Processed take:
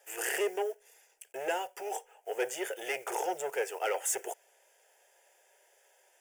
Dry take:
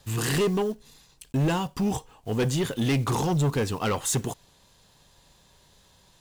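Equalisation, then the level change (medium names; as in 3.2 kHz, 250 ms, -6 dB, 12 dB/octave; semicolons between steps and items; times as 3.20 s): elliptic high-pass 340 Hz, stop band 40 dB; static phaser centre 1.1 kHz, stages 6; 0.0 dB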